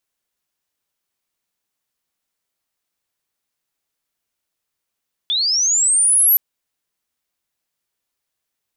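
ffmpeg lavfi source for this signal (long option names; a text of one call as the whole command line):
ffmpeg -f lavfi -i "aevalsrc='pow(10,(-16+6.5*t/1.07)/20)*sin(2*PI*(3400*t+8600*t*t/(2*1.07)))':duration=1.07:sample_rate=44100" out.wav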